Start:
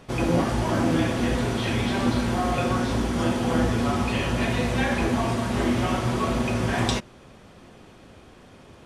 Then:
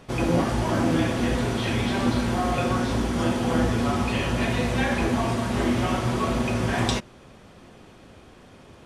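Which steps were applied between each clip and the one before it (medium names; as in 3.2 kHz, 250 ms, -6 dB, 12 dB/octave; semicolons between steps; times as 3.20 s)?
no audible change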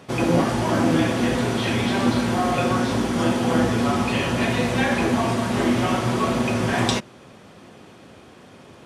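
high-pass 110 Hz 12 dB/octave; trim +3.5 dB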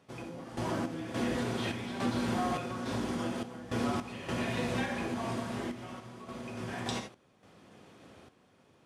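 gated-style reverb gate 100 ms rising, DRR 7.5 dB; compression, threshold -21 dBFS, peak gain reduction 8 dB; random-step tremolo, depth 85%; trim -6.5 dB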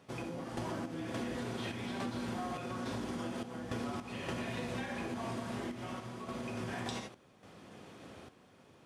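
compression, threshold -39 dBFS, peak gain reduction 11.5 dB; trim +3 dB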